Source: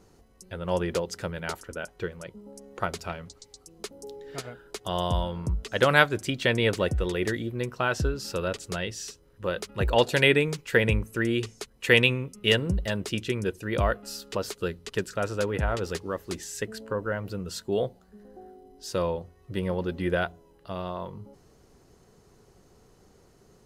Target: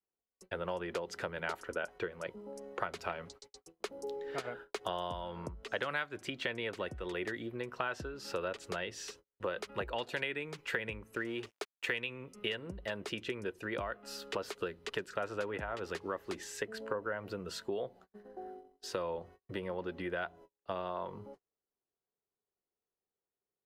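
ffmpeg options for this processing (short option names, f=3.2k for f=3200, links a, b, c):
-filter_complex "[0:a]adynamicequalizer=threshold=0.01:dfrequency=480:dqfactor=2.7:tfrequency=480:tqfactor=2.7:attack=5:release=100:ratio=0.375:range=2.5:mode=cutabove:tftype=bell,agate=range=-39dB:threshold=-49dB:ratio=16:detection=peak,acrossover=split=300|1100[a][b][c];[b]alimiter=limit=-21.5dB:level=0:latency=1:release=235[d];[a][d][c]amix=inputs=3:normalize=0,asettb=1/sr,asplit=3[e][f][g];[e]atrim=end=11.154[h];[f]atrim=start=11.15:end=11.96,asetpts=PTS-STARTPTS,afade=t=in:d=0.004:c=qsin,afade=t=out:st=0.806:d=0.004:c=qsin,aeval=exprs='sgn(val(0))*max(abs(val(0))-0.00447,0)':c=same[i];[g]atrim=start=11.956[j];[h][i]acrossfade=d=0.004:c1=hsin:c2=qsin[k];[k][j]acrossfade=d=0.004:c1=qsin:c2=hsin,acompressor=threshold=-34dB:ratio=12,bass=f=250:g=-13,treble=f=4k:g=-12,volume=3.5dB"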